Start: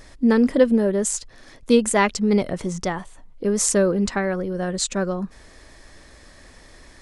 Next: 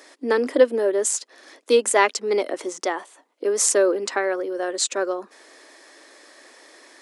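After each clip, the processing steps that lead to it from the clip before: steep high-pass 290 Hz 48 dB/octave; trim +1.5 dB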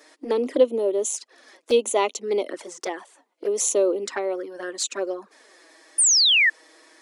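touch-sensitive flanger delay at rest 7.3 ms, full sweep at -19 dBFS; painted sound fall, 5.98–6.50 s, 1.7–9.8 kHz -16 dBFS; trim -1 dB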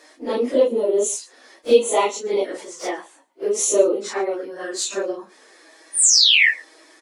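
phase randomisation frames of 100 ms; delay 112 ms -23 dB; trim +3 dB

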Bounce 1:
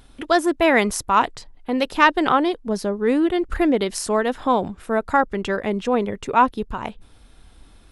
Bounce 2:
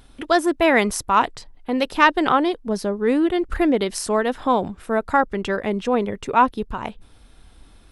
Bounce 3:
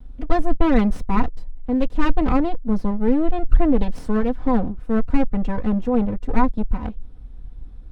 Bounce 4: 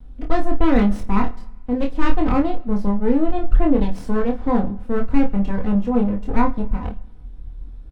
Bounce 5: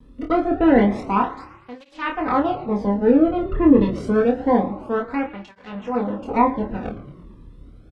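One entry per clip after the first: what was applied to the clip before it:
band-stop 6.9 kHz, Q 26
comb filter that takes the minimum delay 4 ms; tilt EQ -4.5 dB/octave; trim -6.5 dB
early reflections 25 ms -3 dB, 51 ms -12.5 dB; on a send at -21 dB: reverberation RT60 1.2 s, pre-delay 76 ms; on the sum: trim -1 dB
low-pass that closes with the level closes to 2.4 kHz, closed at -8 dBFS; frequency-shifting echo 113 ms, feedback 57%, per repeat +34 Hz, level -17 dB; cancelling through-zero flanger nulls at 0.27 Hz, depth 1.4 ms; trim +5.5 dB

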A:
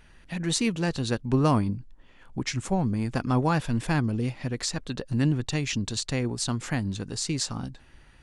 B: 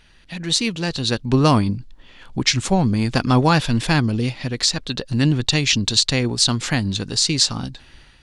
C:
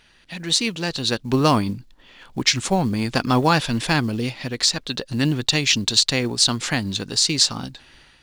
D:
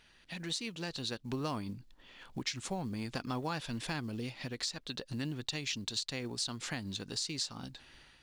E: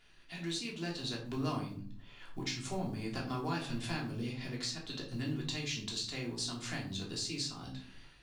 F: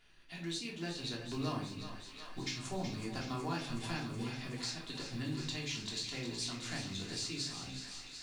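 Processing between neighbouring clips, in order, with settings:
peaking EQ 4 kHz +10 dB 1.3 oct; level rider gain up to 9 dB
bass shelf 140 Hz -10 dB; short-mantissa float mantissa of 4-bit
compression 2.5:1, threshold -31 dBFS, peak gain reduction 13 dB; trim -8 dB
simulated room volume 480 m³, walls furnished, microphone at 3.2 m; trim -5.5 dB
thinning echo 372 ms, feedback 84%, high-pass 540 Hz, level -9 dB; trim -2 dB

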